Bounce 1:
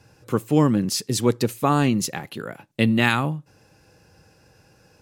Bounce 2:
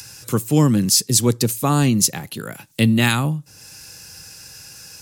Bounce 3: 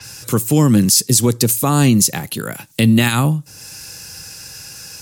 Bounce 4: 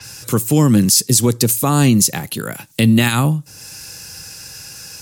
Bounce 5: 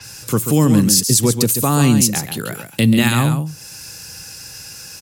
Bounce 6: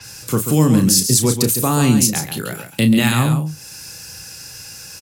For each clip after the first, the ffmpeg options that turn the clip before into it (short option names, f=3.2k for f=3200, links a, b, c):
-filter_complex "[0:a]bass=f=250:g=7,treble=f=4k:g=14,acrossover=split=120|1200[a][b][c];[c]acompressor=mode=upward:threshold=-26dB:ratio=2.5[d];[a][b][d]amix=inputs=3:normalize=0,volume=-1dB"
-af "alimiter=limit=-10dB:level=0:latency=1:release=76,adynamicequalizer=threshold=0.0141:dfrequency=5900:dqfactor=0.7:tfrequency=5900:tqfactor=0.7:attack=5:release=100:ratio=0.375:range=2:mode=boostabove:tftype=highshelf,volume=5.5dB"
-af anull
-af "aecho=1:1:137:0.398,volume=-1dB"
-filter_complex "[0:a]asplit=2[a][b];[b]adelay=32,volume=-8.5dB[c];[a][c]amix=inputs=2:normalize=0,volume=-1dB"